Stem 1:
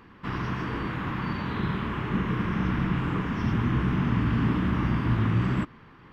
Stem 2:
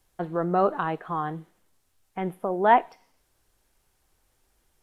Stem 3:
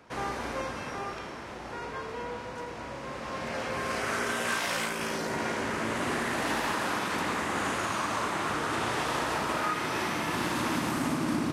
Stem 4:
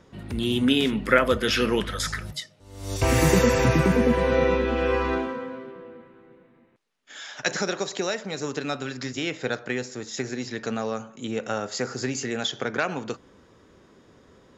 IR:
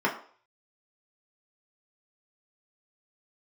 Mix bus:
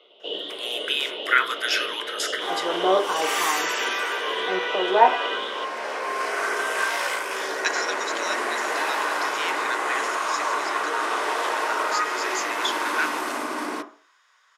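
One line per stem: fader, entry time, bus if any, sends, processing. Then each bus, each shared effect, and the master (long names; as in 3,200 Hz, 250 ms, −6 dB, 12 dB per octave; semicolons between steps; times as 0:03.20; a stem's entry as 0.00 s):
−10.5 dB, 0.00 s, send −11.5 dB, flat-topped bell 1,600 Hz +14 dB 1.1 octaves; auto-filter high-pass saw up 2 Hz 490–1,900 Hz; ring modulation 1,700 Hz
−5.5 dB, 2.30 s, send −10.5 dB, spectral tilt −3 dB per octave
+1.0 dB, 2.30 s, send −14 dB, no processing
0.0 dB, 0.20 s, send −18 dB, high-pass filter 1,100 Hz 24 dB per octave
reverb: on, RT60 0.50 s, pre-delay 3 ms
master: high-pass filter 370 Hz 24 dB per octave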